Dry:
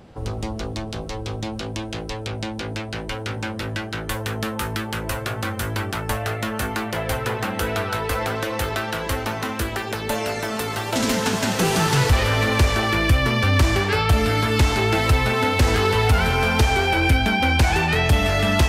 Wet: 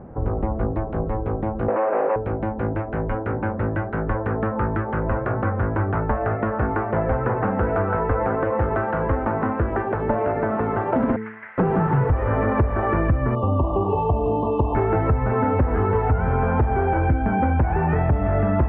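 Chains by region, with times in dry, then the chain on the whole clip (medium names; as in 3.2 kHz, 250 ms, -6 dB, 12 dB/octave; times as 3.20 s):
1.68–2.16 s: median filter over 15 samples + overdrive pedal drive 38 dB, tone 2.4 kHz, clips at -18 dBFS + cabinet simulation 460–4300 Hz, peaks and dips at 540 Hz +8 dB, 2.6 kHz +9 dB, 3.9 kHz -8 dB
11.16–11.58 s: ladder band-pass 2.1 kHz, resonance 75% + band-stop 1.8 kHz, Q 20 + loudspeaker Doppler distortion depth 0.22 ms
13.35–14.75 s: brick-wall FIR band-stop 1.2–2.6 kHz + bass shelf 260 Hz -8 dB
whole clip: Bessel low-pass 1 kHz, order 6; de-hum 109.4 Hz, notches 4; compression, threshold -24 dBFS; trim +7.5 dB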